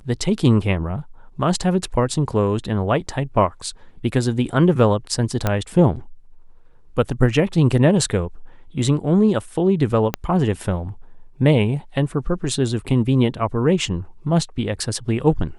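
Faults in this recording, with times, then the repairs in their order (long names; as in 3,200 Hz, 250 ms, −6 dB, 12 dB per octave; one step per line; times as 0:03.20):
0:05.47: click −6 dBFS
0:10.14: click −6 dBFS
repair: click removal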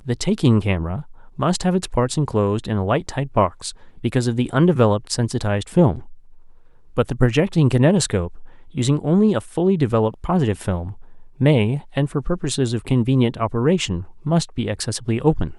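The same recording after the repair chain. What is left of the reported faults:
0:10.14: click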